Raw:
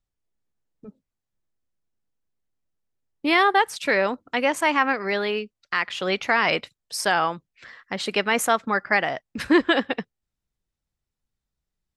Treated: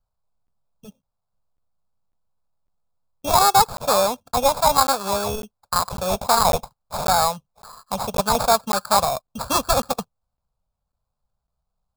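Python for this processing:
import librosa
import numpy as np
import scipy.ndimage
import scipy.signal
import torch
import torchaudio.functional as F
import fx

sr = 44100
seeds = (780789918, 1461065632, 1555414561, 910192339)

y = fx.sample_hold(x, sr, seeds[0], rate_hz=3000.0, jitter_pct=0)
y = fx.fixed_phaser(y, sr, hz=800.0, stages=4)
y = fx.buffer_crackle(y, sr, first_s=0.47, period_s=0.55, block=512, kind='zero')
y = y * 10.0 ** (6.0 / 20.0)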